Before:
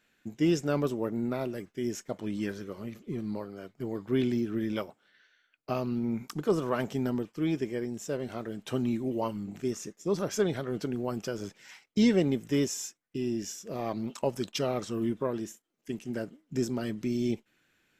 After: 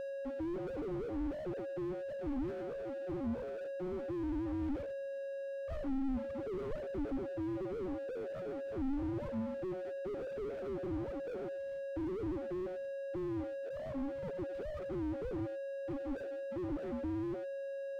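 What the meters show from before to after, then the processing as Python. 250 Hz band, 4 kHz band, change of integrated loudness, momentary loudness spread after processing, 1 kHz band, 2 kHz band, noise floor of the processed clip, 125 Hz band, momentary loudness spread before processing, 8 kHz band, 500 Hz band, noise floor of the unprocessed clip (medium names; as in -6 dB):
-8.5 dB, under -15 dB, -8.0 dB, 4 LU, -9.5 dB, -9.5 dB, -42 dBFS, -10.5 dB, 10 LU, under -25 dB, -5.5 dB, -73 dBFS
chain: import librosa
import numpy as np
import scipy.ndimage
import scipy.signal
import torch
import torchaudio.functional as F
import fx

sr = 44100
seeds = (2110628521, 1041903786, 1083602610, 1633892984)

y = fx.sine_speech(x, sr)
y = scipy.signal.sosfilt(scipy.signal.butter(4, 2200.0, 'lowpass', fs=sr, output='sos'), y)
y = fx.env_lowpass(y, sr, base_hz=1100.0, full_db=-24.0)
y = fx.highpass(y, sr, hz=230.0, slope=6)
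y = fx.hpss(y, sr, part='percussive', gain_db=-9)
y = fx.low_shelf(y, sr, hz=380.0, db=-6.0)
y = y + 10.0 ** (-42.0 / 20.0) * np.sin(2.0 * np.pi * 550.0 * np.arange(len(y)) / sr)
y = y + 10.0 ** (-22.0 / 20.0) * np.pad(y, (int(99 * sr / 1000.0), 0))[:len(y)]
y = fx.slew_limit(y, sr, full_power_hz=2.6)
y = F.gain(torch.from_numpy(y), 6.0).numpy()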